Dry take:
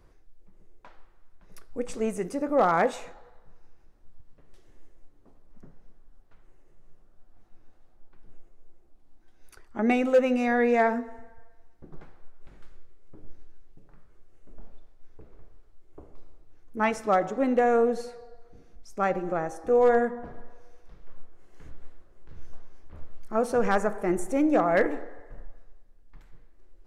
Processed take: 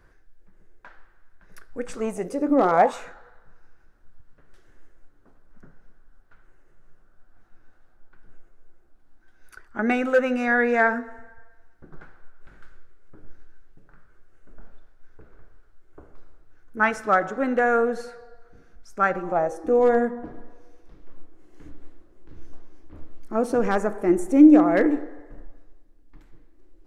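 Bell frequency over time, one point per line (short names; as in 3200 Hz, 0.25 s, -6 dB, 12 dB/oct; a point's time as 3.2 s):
bell +13 dB 0.51 oct
1.91 s 1600 Hz
2.56 s 250 Hz
3 s 1500 Hz
19.15 s 1500 Hz
19.67 s 300 Hz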